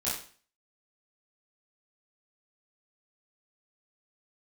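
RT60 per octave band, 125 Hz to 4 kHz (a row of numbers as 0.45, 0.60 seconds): 0.45, 0.45, 0.45, 0.45, 0.45, 0.40 seconds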